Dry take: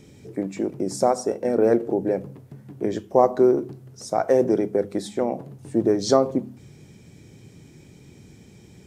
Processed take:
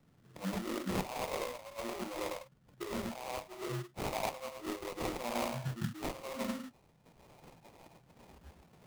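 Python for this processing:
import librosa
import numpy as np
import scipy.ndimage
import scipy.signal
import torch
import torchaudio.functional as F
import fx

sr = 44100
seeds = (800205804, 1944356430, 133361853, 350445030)

y = fx.echo_feedback(x, sr, ms=102, feedback_pct=33, wet_db=-5.5)
y = fx.over_compress(y, sr, threshold_db=-29.0, ratio=-1.0)
y = fx.peak_eq(y, sr, hz=390.0, db=-12.5, octaves=0.9)
y = fx.room_shoebox(y, sr, seeds[0], volume_m3=210.0, walls='furnished', distance_m=0.92)
y = fx.noise_reduce_blind(y, sr, reduce_db=30)
y = fx.sample_hold(y, sr, seeds[1], rate_hz=1600.0, jitter_pct=20)
y = fx.band_squash(y, sr, depth_pct=40)
y = y * librosa.db_to_amplitude(-5.0)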